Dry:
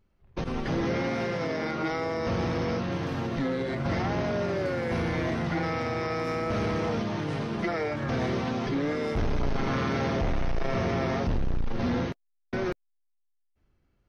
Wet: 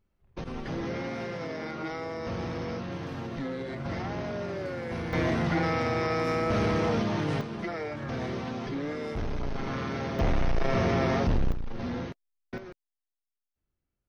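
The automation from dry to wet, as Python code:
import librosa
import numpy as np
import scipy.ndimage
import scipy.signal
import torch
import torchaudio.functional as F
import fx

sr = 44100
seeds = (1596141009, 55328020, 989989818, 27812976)

y = fx.gain(x, sr, db=fx.steps((0.0, -5.5), (5.13, 2.0), (7.41, -5.0), (10.19, 2.0), (11.52, -6.0), (12.58, -15.0)))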